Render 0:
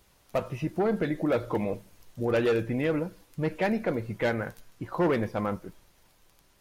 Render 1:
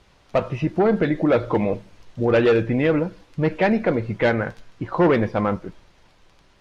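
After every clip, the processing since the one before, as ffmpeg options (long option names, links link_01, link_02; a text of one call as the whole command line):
ffmpeg -i in.wav -af "lowpass=4500,volume=8dB" out.wav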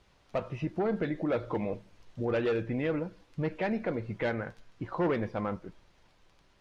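ffmpeg -i in.wav -af "alimiter=limit=-14dB:level=0:latency=1:release=445,volume=-8.5dB" out.wav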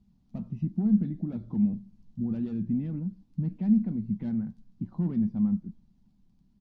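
ffmpeg -i in.wav -af "firequalizer=gain_entry='entry(120,0);entry(210,14);entry(310,-7);entry(500,-24);entry(750,-16);entry(1300,-24);entry(2100,-25);entry(4400,-16)':delay=0.05:min_phase=1" out.wav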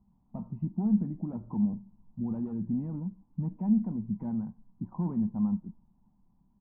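ffmpeg -i in.wav -af "lowpass=frequency=950:width_type=q:width=4.9,volume=-3dB" out.wav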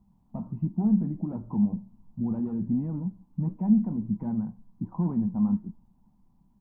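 ffmpeg -i in.wav -af "flanger=delay=5.9:depth=8.1:regen=-74:speed=1.4:shape=sinusoidal,volume=8dB" out.wav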